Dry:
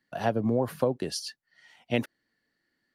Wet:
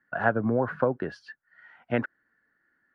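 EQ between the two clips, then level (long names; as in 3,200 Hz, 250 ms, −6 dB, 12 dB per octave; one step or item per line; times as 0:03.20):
low-pass with resonance 1,500 Hz, resonance Q 5.7
0.0 dB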